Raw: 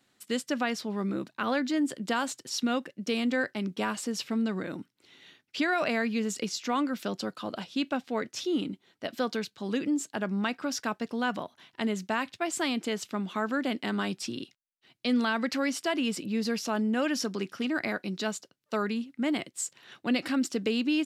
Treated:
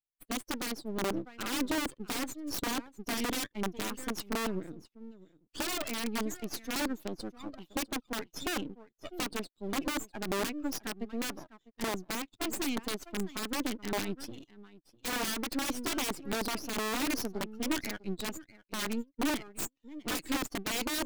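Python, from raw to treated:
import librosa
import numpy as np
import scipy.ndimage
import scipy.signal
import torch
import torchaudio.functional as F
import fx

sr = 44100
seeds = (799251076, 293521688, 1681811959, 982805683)

y = fx.bin_expand(x, sr, power=2.0)
y = fx.peak_eq(y, sr, hz=870.0, db=-7.0, octaves=2.5, at=(4.72, 6.76))
y = np.maximum(y, 0.0)
y = y + 10.0 ** (-20.0 / 20.0) * np.pad(y, (int(651 * sr / 1000.0), 0))[:len(y)]
y = (np.mod(10.0 ** (30.5 / 20.0) * y + 1.0, 2.0) - 1.0) / 10.0 ** (30.5 / 20.0)
y = fx.peak_eq(y, sr, hz=300.0, db=10.5, octaves=0.67)
y = y * librosa.db_to_amplitude(4.5)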